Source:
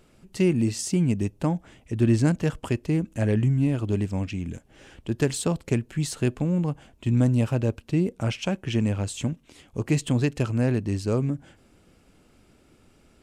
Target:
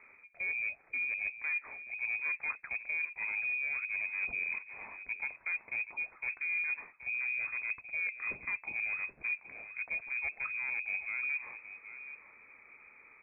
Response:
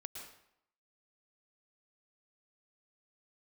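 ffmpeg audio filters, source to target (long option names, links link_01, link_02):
-filter_complex "[0:a]highpass=frequency=85:width=0.5412,highpass=frequency=85:width=1.3066,aemphasis=mode=production:type=75fm,areverse,acompressor=threshold=-34dB:ratio=16,areverse,volume=32dB,asoftclip=hard,volume=-32dB,asplit=2[link_01][link_02];[link_02]aecho=0:1:776:0.237[link_03];[link_01][link_03]amix=inputs=2:normalize=0,lowpass=frequency=2200:width_type=q:width=0.5098,lowpass=frequency=2200:width_type=q:width=0.6013,lowpass=frequency=2200:width_type=q:width=0.9,lowpass=frequency=2200:width_type=q:width=2.563,afreqshift=-2600,volume=2.5dB"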